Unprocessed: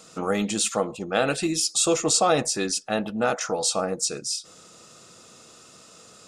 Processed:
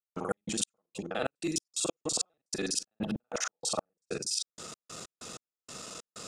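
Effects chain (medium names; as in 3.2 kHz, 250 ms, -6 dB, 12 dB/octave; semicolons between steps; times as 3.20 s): time reversed locally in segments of 41 ms; trance gate ".x.x..xx.x" 95 bpm -60 dB; reverse; compression 6:1, threshold -37 dBFS, peak gain reduction 18 dB; reverse; trim +6.5 dB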